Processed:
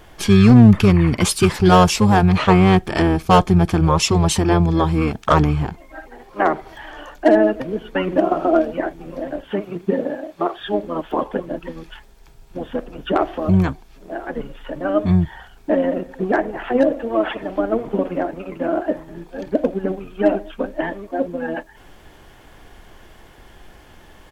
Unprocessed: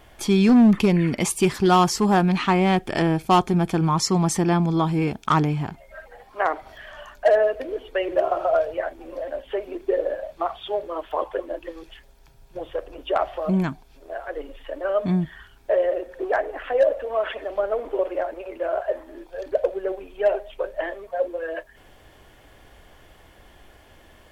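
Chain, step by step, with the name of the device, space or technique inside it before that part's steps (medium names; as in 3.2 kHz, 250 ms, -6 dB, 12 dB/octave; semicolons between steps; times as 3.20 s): 9.46–10.58 s: high-pass 180 Hz -> 400 Hz 6 dB/octave; peaking EQ 560 Hz -4.5 dB 0.24 oct; octave pedal (harmony voices -12 st -2 dB); trim +3.5 dB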